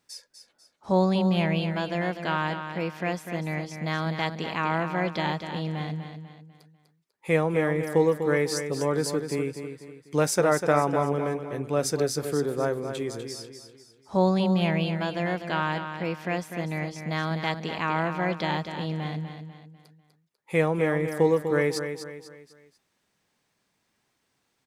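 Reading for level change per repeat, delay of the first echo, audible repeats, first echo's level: −8.0 dB, 247 ms, 4, −8.5 dB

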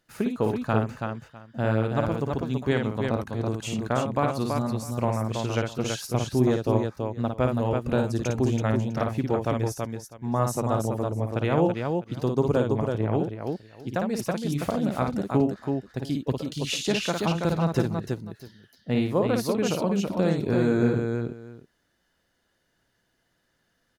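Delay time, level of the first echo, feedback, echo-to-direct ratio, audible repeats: 55 ms, −5.0 dB, repeats not evenly spaced, −1.5 dB, 3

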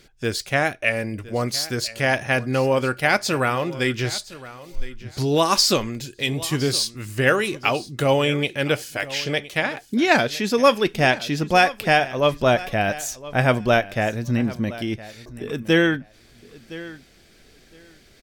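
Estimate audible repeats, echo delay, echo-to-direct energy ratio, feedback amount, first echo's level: 2, 1,014 ms, −17.5 dB, 17%, −17.5 dB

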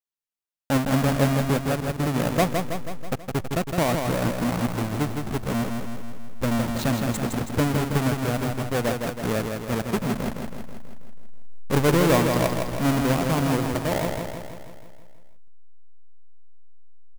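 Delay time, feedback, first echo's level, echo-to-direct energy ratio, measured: 162 ms, 58%, −5.0 dB, −3.0 dB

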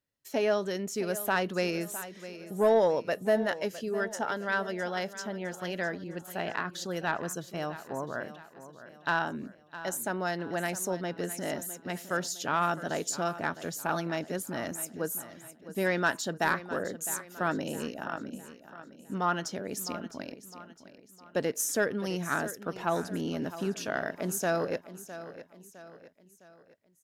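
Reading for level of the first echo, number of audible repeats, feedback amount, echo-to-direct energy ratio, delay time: −14.0 dB, 3, 44%, −13.0 dB, 659 ms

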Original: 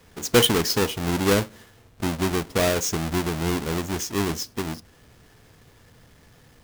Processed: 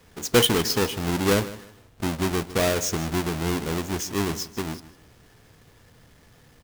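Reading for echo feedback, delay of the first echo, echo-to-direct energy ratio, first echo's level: 27%, 155 ms, −16.0 dB, −16.5 dB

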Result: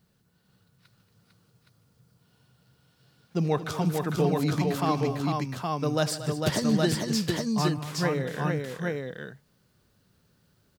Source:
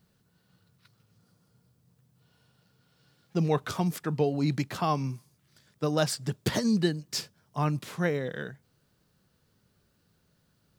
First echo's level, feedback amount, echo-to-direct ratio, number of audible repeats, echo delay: −20.0 dB, repeats not evenly spaced, 0.0 dB, 5, 76 ms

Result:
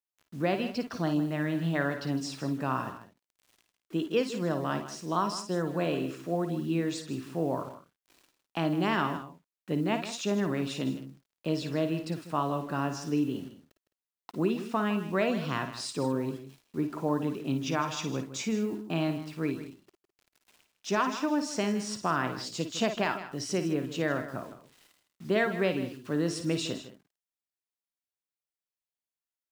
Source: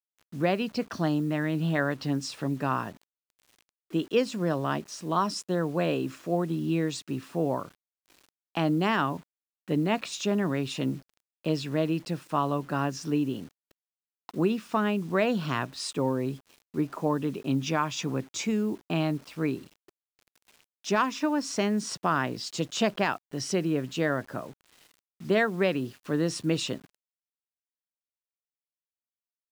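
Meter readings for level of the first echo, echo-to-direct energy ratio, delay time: −9.0 dB, −7.0 dB, 54 ms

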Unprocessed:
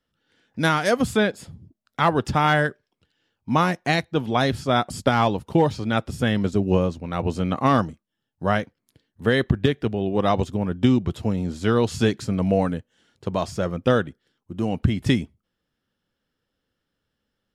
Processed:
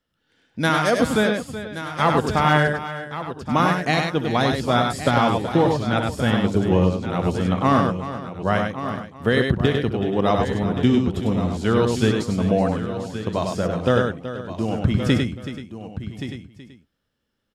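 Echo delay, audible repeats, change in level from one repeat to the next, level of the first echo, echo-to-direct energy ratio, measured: 65 ms, 9, repeats not evenly spaced, −13.0 dB, −2.5 dB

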